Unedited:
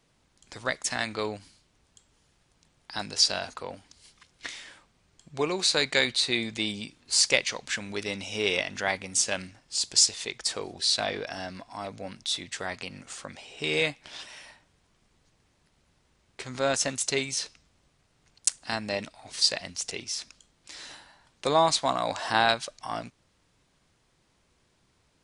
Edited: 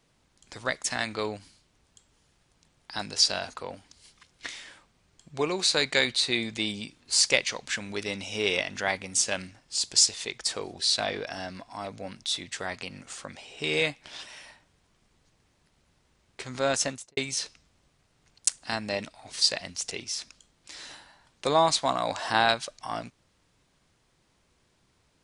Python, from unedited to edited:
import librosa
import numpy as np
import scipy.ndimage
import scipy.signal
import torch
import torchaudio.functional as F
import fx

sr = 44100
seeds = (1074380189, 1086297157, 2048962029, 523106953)

y = fx.studio_fade_out(x, sr, start_s=16.82, length_s=0.35)